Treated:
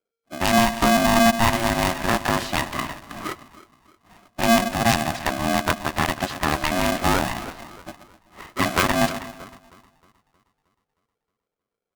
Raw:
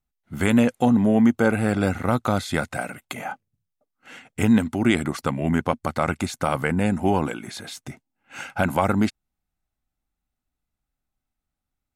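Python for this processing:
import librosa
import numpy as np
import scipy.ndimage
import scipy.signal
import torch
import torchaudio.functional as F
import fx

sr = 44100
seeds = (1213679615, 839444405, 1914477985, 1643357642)

p1 = fx.self_delay(x, sr, depth_ms=0.17)
p2 = fx.low_shelf(p1, sr, hz=130.0, db=-8.5)
p3 = p2 + fx.echo_split(p2, sr, split_hz=540.0, low_ms=128, high_ms=313, feedback_pct=52, wet_db=-13, dry=0)
p4 = fx.env_lowpass(p3, sr, base_hz=480.0, full_db=-19.5)
p5 = p4 * np.sign(np.sin(2.0 * np.pi * 460.0 * np.arange(len(p4)) / sr))
y = p5 * 10.0 ** (2.0 / 20.0)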